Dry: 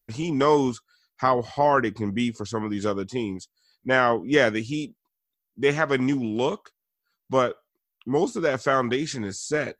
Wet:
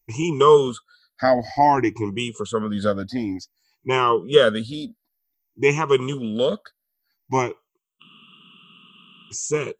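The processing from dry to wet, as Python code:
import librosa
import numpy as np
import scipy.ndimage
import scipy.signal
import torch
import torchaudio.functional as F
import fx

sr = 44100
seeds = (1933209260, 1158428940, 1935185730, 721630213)

y = fx.spec_ripple(x, sr, per_octave=0.72, drift_hz=0.54, depth_db=20)
y = fx.spec_freeze(y, sr, seeds[0], at_s=8.04, hold_s=1.28)
y = y * 10.0 ** (-1.0 / 20.0)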